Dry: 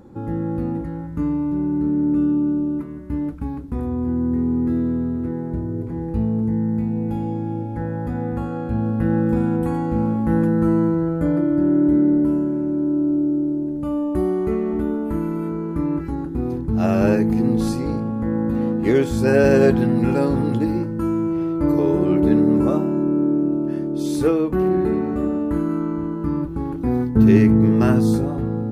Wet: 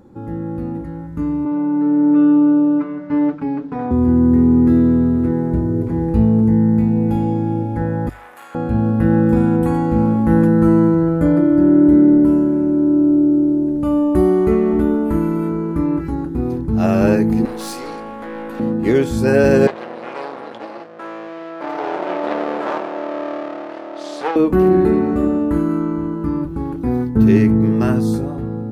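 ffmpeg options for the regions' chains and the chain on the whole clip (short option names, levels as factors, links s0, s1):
-filter_complex "[0:a]asettb=1/sr,asplit=3[s0][s1][s2];[s0]atrim=end=1.454[s3];[s1]atrim=start=1.45:end=3.91,asetpts=PTS-STARTPTS,afade=t=in:d=0.004:c=qsin,afade=t=out:st=2.456:d=0.004:c=qsin,highpass=480,lowpass=5100,aemphasis=mode=reproduction:type=bsi,aecho=1:1:6.8:0.93,atrim=end_sample=108486[s4];[s2]atrim=start=3.906[s5];[s3][s4]acrossfade=d=0.004:c1=hsin:c2=qsin[s6];[s6][s5]acrossfade=d=0.004:c1=qsin:c2=hsin,asettb=1/sr,asplit=3[s7][s8][s9];[s7]atrim=end=8.094[s10];[s8]atrim=start=8.09:end=8.55,asetpts=PTS-STARTPTS,afade=t=in:d=0.004:c=qsin,afade=t=out:st=0.456:d=0.004:c=qsin,aeval=exprs='(tanh(17.8*val(0)+0.6)-tanh(0.6))/17.8':c=same,highpass=1300,aemphasis=mode=production:type=50kf[s11];[s9]atrim=start=8.546[s12];[s10][s11]acrossfade=d=0.004:c1=hsin:c2=qsin[s13];[s13][s12]acrossfade=d=0.004:c1=qsin:c2=hsin,asettb=1/sr,asplit=3[s14][s15][s16];[s14]atrim=end=17.454[s17];[s15]atrim=start=17.45:end=18.6,asetpts=PTS-STARTPTS,afade=t=in:d=0.004:c=qsin,afade=t=out:st=1.146:d=0.004:c=qsin,highpass=630,aeval=exprs='(tanh(50.1*val(0)+0.25)-tanh(0.25))/50.1':c=same,acontrast=82[s18];[s16]atrim=start=18.596[s19];[s17][s18]acrossfade=d=0.004:c1=hsin:c2=qsin[s20];[s20][s19]acrossfade=d=0.004:c1=qsin:c2=hsin,asettb=1/sr,asplit=3[s21][s22][s23];[s21]atrim=end=19.674[s24];[s22]atrim=start=19.67:end=24.36,asetpts=PTS-STARTPTS,afade=t=in:d=0.004:c=qsin,afade=t=out:st=4.686:d=0.004:c=qsin,aeval=exprs='max(val(0),0)':c=same,highpass=630,lowpass=4500[s25];[s23]atrim=start=24.356[s26];[s24][s25]acrossfade=d=0.004:c1=hsin:c2=qsin[s27];[s27][s26]acrossfade=d=0.004:c1=qsin:c2=hsin,bandreject=f=50:t=h:w=6,bandreject=f=100:t=h:w=6,bandreject=f=150:t=h:w=6,dynaudnorm=f=350:g=11:m=3.98,volume=0.891"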